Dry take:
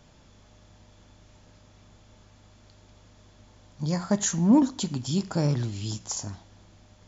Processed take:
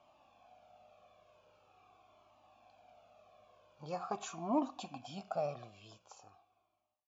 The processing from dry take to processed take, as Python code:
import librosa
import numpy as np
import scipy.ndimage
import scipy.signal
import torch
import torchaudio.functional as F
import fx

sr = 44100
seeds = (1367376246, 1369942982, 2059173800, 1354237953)

y = fx.fade_out_tail(x, sr, length_s=2.26)
y = fx.vowel_filter(y, sr, vowel='a')
y = fx.comb_cascade(y, sr, direction='falling', hz=0.44)
y = y * 10.0 ** (10.5 / 20.0)